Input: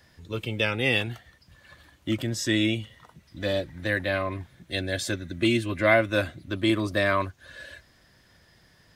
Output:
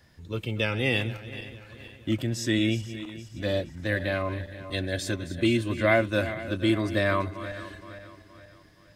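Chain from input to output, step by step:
feedback delay that plays each chunk backwards 235 ms, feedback 65%, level −13 dB
low-shelf EQ 400 Hz +4.5 dB
level −3 dB

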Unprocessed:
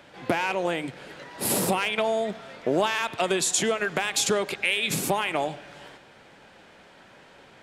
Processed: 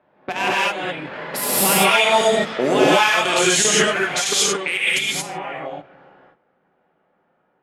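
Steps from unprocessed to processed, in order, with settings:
source passing by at 0:02.04, 21 m/s, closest 19 metres
spectral tilt +2.5 dB per octave
hum removal 112.1 Hz, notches 7
output level in coarse steps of 16 dB
low-pass that shuts in the quiet parts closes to 870 Hz, open at −31 dBFS
automatic gain control gain up to 6 dB
brickwall limiter −18 dBFS, peak gain reduction 6.5 dB
high-shelf EQ 4,600 Hz −5.5 dB
reverb whose tail is shaped and stops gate 250 ms rising, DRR −7 dB
level +7.5 dB

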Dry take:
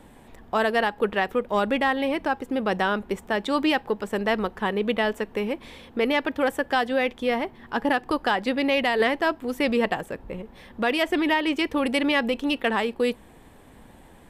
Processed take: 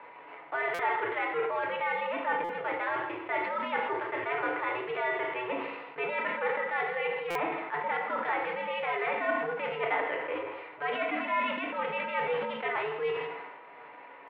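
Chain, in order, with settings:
spectral envelope flattened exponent 0.6
steady tone 900 Hz −48 dBFS
reversed playback
downward compressor 20 to 1, threshold −29 dBFS, peak gain reduction 13.5 dB
reversed playback
single-sideband voice off tune −110 Hz 470–2,100 Hz
pitch shifter +3.5 semitones
on a send: single-tap delay 163 ms −13.5 dB
on the sum: feedback delay network reverb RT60 0.58 s, low-frequency decay 1.05×, high-frequency decay 0.95×, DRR 0.5 dB
buffer that repeats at 0:00.74/0:02.44/0:07.30, samples 256, times 8
level that may fall only so fast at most 40 dB per second
level +1.5 dB

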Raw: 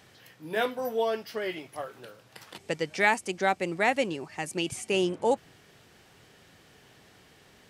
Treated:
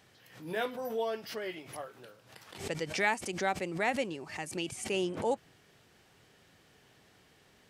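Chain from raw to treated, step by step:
background raised ahead of every attack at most 98 dB per second
level −6 dB

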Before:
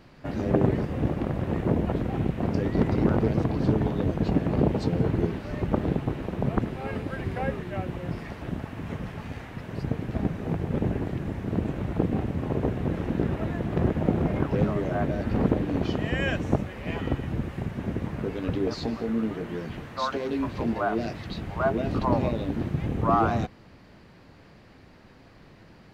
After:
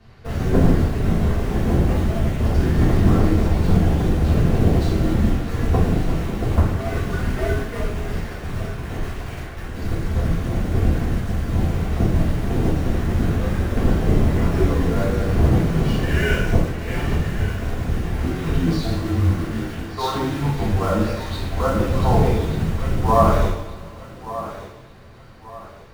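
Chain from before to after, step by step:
low-shelf EQ 98 Hz +6.5 dB
frequency shifter −130 Hz
in parallel at −9.5 dB: bit reduction 5 bits
on the sum: feedback echo with a high-pass in the loop 1,182 ms, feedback 37%, high-pass 260 Hz, level −12.5 dB
coupled-rooms reverb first 0.7 s, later 2.9 s, from −20 dB, DRR −9 dB
level −5.5 dB

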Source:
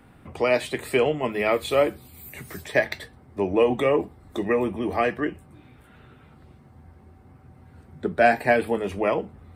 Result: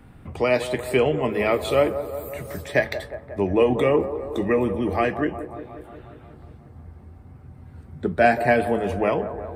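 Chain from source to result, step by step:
low-shelf EQ 160 Hz +9.5 dB
on a send: delay with a band-pass on its return 180 ms, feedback 68%, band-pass 630 Hz, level −10 dB

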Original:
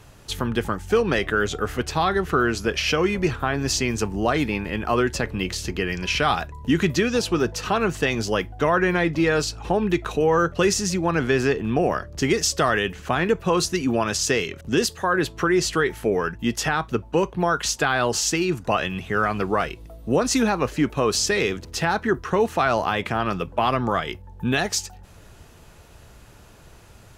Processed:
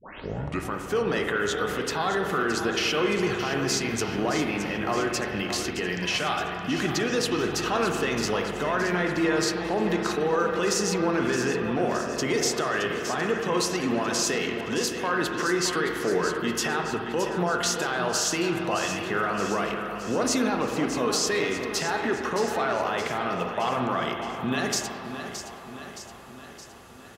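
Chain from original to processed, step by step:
turntable start at the beginning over 0.73 s
brickwall limiter −16.5 dBFS, peak gain reduction 9.5 dB
high-pass filter 250 Hz 6 dB per octave
notch filter 2,400 Hz, Q 19
repeating echo 619 ms, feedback 58%, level −10 dB
convolution reverb RT60 2.0 s, pre-delay 39 ms, DRR 3 dB

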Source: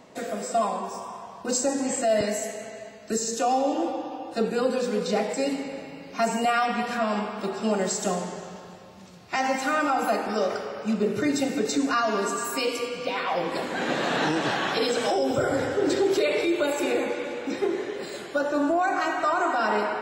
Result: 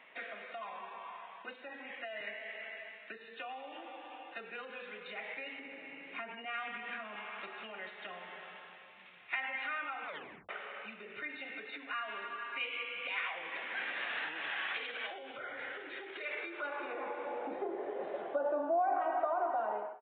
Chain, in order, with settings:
fade-out on the ending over 0.92 s
0:05.59–0:07.16: parametric band 280 Hz +11.5 dB 1.5 octaves
brickwall limiter −18 dBFS, peak gain reduction 9 dB
0:10.04: tape stop 0.45 s
downward compressor 3 to 1, threshold −33 dBFS, peak gain reduction 8.5 dB
band-pass filter sweep 2,200 Hz → 700 Hz, 0:16.01–0:17.63
downsampling to 8,000 Hz
level +5 dB

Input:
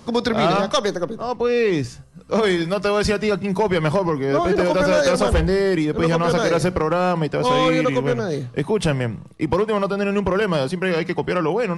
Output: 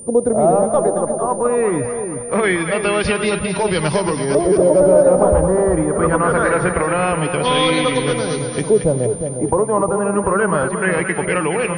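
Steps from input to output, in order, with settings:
auto-filter low-pass saw up 0.23 Hz 480–6,500 Hz
steady tone 9,200 Hz −33 dBFS
echo with a time of its own for lows and highs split 800 Hz, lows 357 ms, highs 225 ms, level −7 dB

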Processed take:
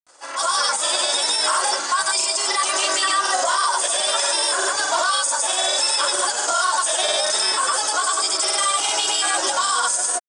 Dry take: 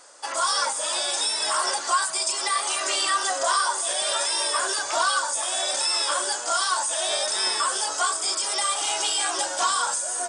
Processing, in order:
granular cloud, pitch spread up and down by 0 semitones
automatic gain control gain up to 9 dB
brickwall limiter −10.5 dBFS, peak gain reduction 6.5 dB

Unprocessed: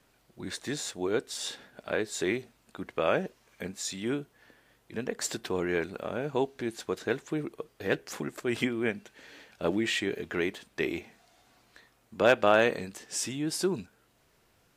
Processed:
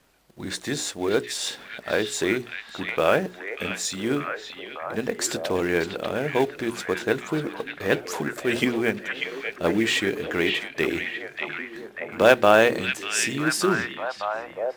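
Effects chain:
mains-hum notches 60/120/180/240/300/360/420 Hz
in parallel at −9.5 dB: log-companded quantiser 4 bits
on the sum: echo through a band-pass that steps 592 ms, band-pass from 2,600 Hz, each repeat −0.7 octaves, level −1.5 dB
level +4 dB

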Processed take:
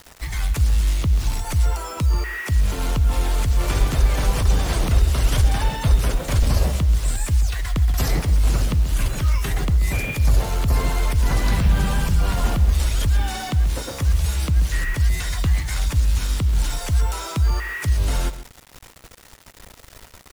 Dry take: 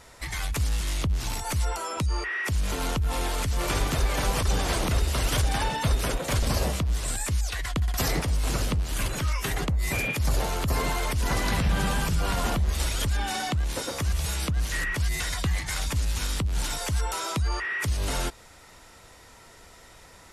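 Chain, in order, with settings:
low-shelf EQ 140 Hz +10 dB
bit reduction 7 bits
slap from a distant wall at 23 metres, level −13 dB

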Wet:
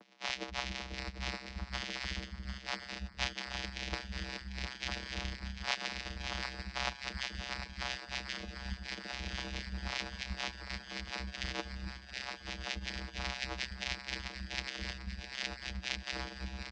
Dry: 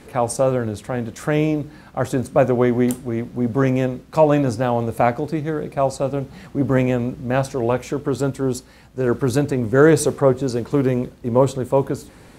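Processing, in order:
samples in bit-reversed order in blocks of 256 samples
harmonic and percussive parts rebalanced harmonic −18 dB
reversed playback
downward compressor 6 to 1, threshold −41 dBFS, peak gain reduction 26 dB
reversed playback
channel vocoder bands 4, square 87.9 Hz
on a send: feedback echo with a high-pass in the loop 552 ms, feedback 77%, high-pass 170 Hz, level −11 dB
on the sum: wrong playback speed 45 rpm record played at 33 rpm
multiband delay without the direct sound highs, lows 280 ms, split 220 Hz
level +9.5 dB

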